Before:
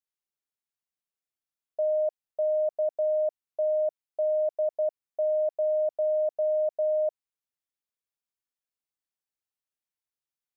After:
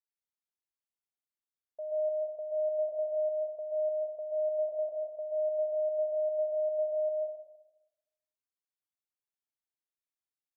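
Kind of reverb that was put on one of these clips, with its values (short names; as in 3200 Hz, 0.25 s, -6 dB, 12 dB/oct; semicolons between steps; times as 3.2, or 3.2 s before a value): plate-style reverb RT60 0.99 s, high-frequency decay 0.7×, pre-delay 0.115 s, DRR -2.5 dB; gain -12.5 dB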